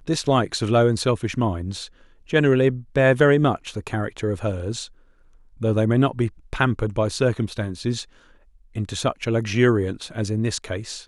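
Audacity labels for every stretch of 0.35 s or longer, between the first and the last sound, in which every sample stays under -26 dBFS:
1.840000	2.330000	silence
4.830000	5.620000	silence
8.010000	8.760000	silence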